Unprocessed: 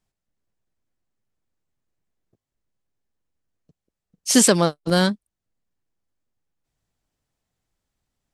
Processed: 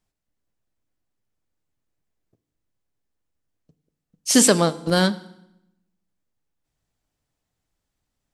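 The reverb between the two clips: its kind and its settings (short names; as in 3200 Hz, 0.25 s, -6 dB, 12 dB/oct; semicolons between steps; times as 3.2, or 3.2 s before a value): FDN reverb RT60 0.82 s, low-frequency decay 1.4×, high-frequency decay 0.9×, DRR 13.5 dB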